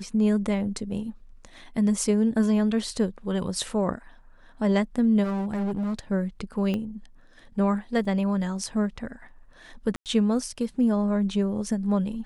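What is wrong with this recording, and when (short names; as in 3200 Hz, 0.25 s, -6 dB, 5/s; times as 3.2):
5.23–5.99 clipped -24.5 dBFS
6.74 pop -18 dBFS
8.05 gap 2.8 ms
9.96–10.06 gap 98 ms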